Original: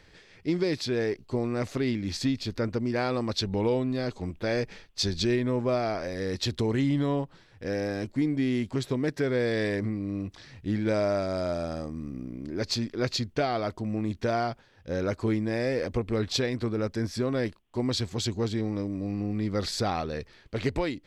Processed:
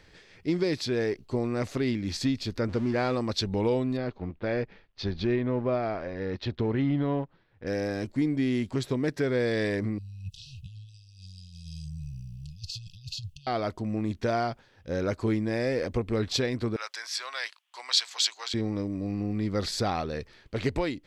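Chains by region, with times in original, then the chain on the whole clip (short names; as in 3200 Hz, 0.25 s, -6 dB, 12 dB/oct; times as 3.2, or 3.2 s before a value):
2.69–3.15 zero-crossing step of -36 dBFS + air absorption 95 m
3.97–7.67 G.711 law mismatch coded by A + Gaussian blur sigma 2.4 samples
9.98–13.47 negative-ratio compressor -35 dBFS + brick-wall FIR band-stop 170–2500 Hz
16.76–18.54 HPF 860 Hz 24 dB/oct + bell 4000 Hz +8.5 dB 2.7 oct
whole clip: dry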